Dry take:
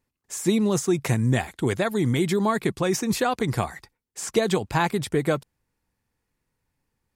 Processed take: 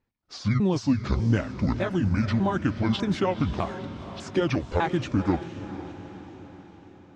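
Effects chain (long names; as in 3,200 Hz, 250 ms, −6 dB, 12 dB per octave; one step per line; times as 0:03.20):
pitch shifter swept by a sawtooth −11 semitones, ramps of 600 ms
high-frequency loss of the air 150 metres
feedback delay with all-pass diffusion 496 ms, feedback 54%, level −12 dB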